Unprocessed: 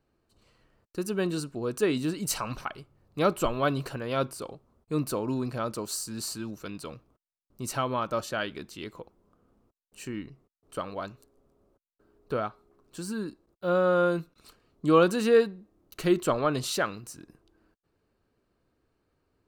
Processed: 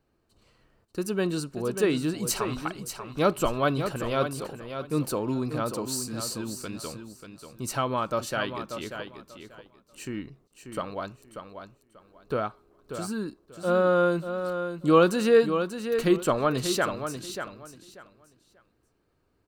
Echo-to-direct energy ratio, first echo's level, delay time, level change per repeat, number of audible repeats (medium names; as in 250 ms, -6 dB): -8.5 dB, -8.5 dB, 588 ms, -13.5 dB, 2